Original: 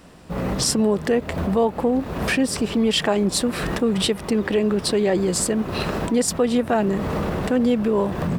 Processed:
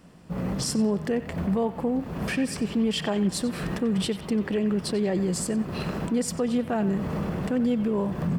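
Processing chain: bell 170 Hz +7.5 dB 1.1 oct; notch 3800 Hz, Q 18; on a send: narrowing echo 92 ms, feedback 61%, band-pass 2000 Hz, level -10.5 dB; on the sum: gain -8.5 dB

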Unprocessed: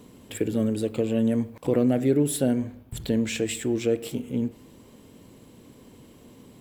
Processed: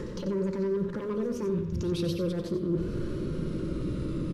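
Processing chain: speed glide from 181% -> 124%; steep low-pass 11000 Hz 48 dB/oct; RIAA curve playback; limiter -19.5 dBFS, peak gain reduction 11 dB; reverse; compressor 6:1, threshold -41 dBFS, peak gain reduction 16.5 dB; reverse; pre-echo 0.108 s -15.5 dB; sample leveller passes 1; Butterworth band-stop 750 Hz, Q 1.7; on a send: echo 90 ms -9 dB; on the sum: shoebox room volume 2300 m³, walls furnished, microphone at 0.89 m; mismatched tape noise reduction encoder only; gain +9 dB

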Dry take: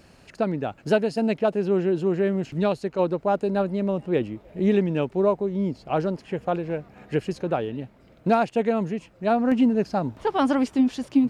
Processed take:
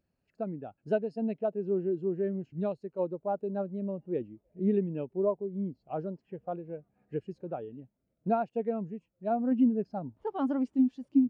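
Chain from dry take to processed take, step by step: spectral expander 1.5:1; gain -5 dB

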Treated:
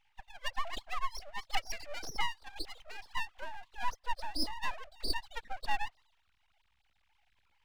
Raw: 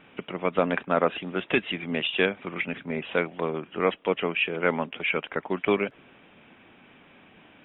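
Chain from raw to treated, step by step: sine-wave speech; envelope phaser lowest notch 450 Hz, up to 1200 Hz, full sweep at -20 dBFS; full-wave rectifier; gain -4.5 dB

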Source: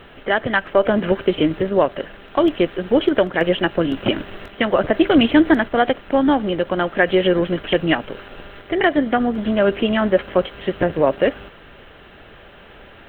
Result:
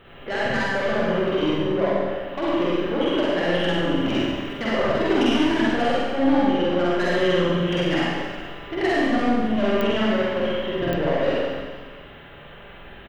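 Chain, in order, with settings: 1.57–2.03 LPF 1400 Hz; soft clip -15 dBFS, distortion -10 dB; doubler 45 ms -2.5 dB; reverb RT60 1.5 s, pre-delay 46 ms, DRR -6 dB; pops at 9.81/10.93, -5 dBFS; gain -8 dB

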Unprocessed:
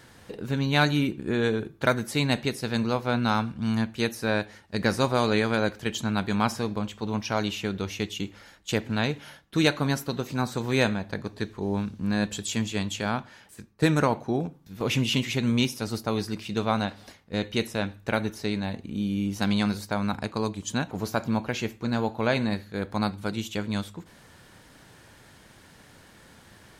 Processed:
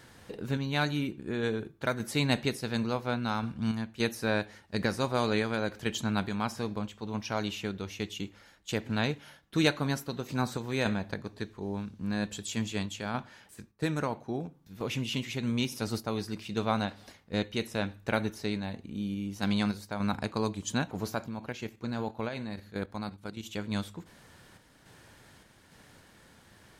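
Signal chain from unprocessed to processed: 21.26–23.46 level quantiser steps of 10 dB; random-step tremolo; gain -2 dB

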